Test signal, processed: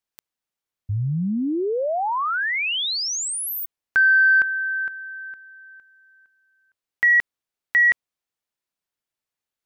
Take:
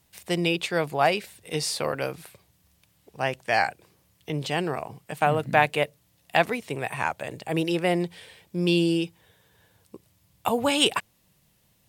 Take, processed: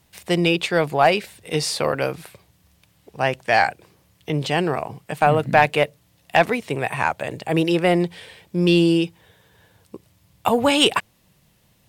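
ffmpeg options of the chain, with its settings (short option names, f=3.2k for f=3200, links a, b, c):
-af "acontrast=66,highshelf=f=5.8k:g=-5.5"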